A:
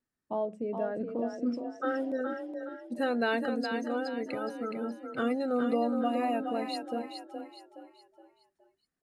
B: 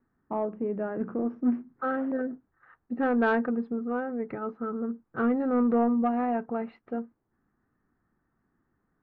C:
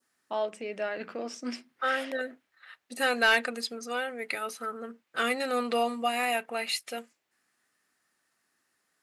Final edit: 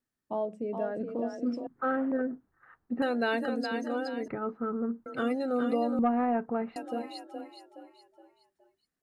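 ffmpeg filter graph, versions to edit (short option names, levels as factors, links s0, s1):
-filter_complex "[1:a]asplit=3[s0][s1][s2];[0:a]asplit=4[s3][s4][s5][s6];[s3]atrim=end=1.672[s7];[s0]atrim=start=1.668:end=3.022[s8];[s4]atrim=start=3.018:end=4.282[s9];[s1]atrim=start=4.278:end=5.062[s10];[s5]atrim=start=5.058:end=5.992[s11];[s2]atrim=start=5.988:end=6.762[s12];[s6]atrim=start=6.758[s13];[s7][s8]acrossfade=d=0.004:c1=hsin:c2=hsin[s14];[s14][s9]acrossfade=d=0.004:c1=hsin:c2=hsin[s15];[s15][s10]acrossfade=d=0.004:c1=hsin:c2=hsin[s16];[s16][s11]acrossfade=d=0.004:c1=hsin:c2=hsin[s17];[s17][s12]acrossfade=d=0.004:c1=hsin:c2=hsin[s18];[s18][s13]acrossfade=d=0.004:c1=hsin:c2=hsin"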